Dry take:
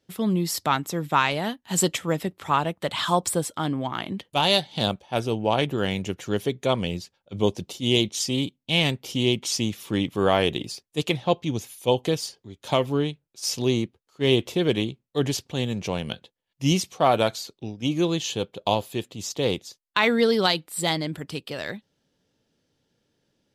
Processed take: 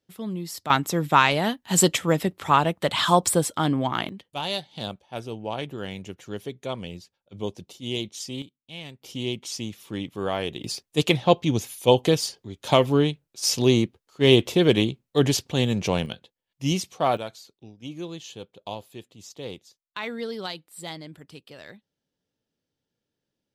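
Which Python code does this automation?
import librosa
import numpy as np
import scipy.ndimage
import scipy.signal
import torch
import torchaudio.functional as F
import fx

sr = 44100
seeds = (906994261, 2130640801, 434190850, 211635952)

y = fx.gain(x, sr, db=fx.steps((0.0, -8.0), (0.7, 3.5), (4.09, -8.5), (8.42, -17.5), (9.02, -7.0), (10.64, 4.0), (16.06, -3.0), (17.17, -12.0)))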